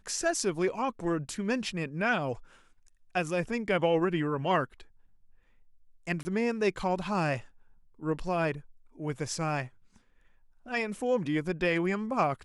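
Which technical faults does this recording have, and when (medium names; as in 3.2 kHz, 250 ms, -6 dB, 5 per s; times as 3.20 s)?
6.23–6.25 s: dropout 20 ms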